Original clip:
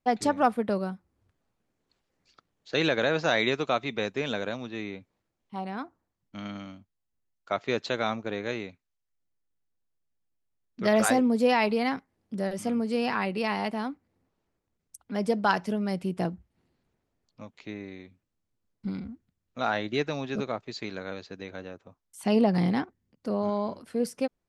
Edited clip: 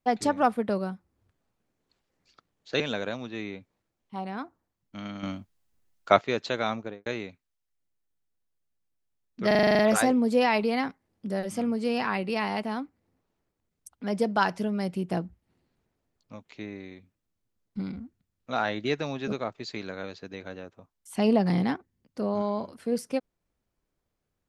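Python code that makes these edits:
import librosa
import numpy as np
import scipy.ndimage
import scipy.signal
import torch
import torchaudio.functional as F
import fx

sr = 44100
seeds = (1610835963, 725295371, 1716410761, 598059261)

y = fx.studio_fade_out(x, sr, start_s=8.18, length_s=0.28)
y = fx.edit(y, sr, fx.cut(start_s=2.8, length_s=1.4),
    fx.clip_gain(start_s=6.63, length_s=0.98, db=10.0),
    fx.stutter(start_s=10.87, slice_s=0.04, count=9), tone=tone)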